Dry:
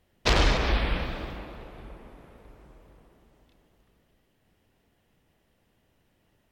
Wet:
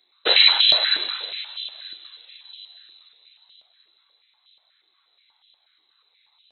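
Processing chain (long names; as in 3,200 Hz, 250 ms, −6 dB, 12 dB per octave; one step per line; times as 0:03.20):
flanger 0.32 Hz, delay 0.5 ms, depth 1.9 ms, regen −47%
voice inversion scrambler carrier 4,000 Hz
high-pass on a step sequencer 8.3 Hz 340–3,100 Hz
level +5 dB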